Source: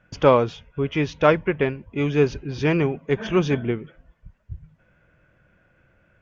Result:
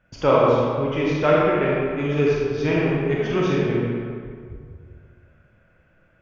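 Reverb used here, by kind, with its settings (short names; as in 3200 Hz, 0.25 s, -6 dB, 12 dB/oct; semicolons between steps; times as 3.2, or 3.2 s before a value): digital reverb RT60 2.1 s, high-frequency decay 0.6×, pre-delay 0 ms, DRR -5 dB; gain -5 dB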